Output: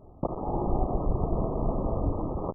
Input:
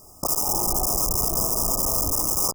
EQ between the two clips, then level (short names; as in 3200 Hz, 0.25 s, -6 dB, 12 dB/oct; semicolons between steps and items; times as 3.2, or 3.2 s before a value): Gaussian blur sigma 10 samples; +3.5 dB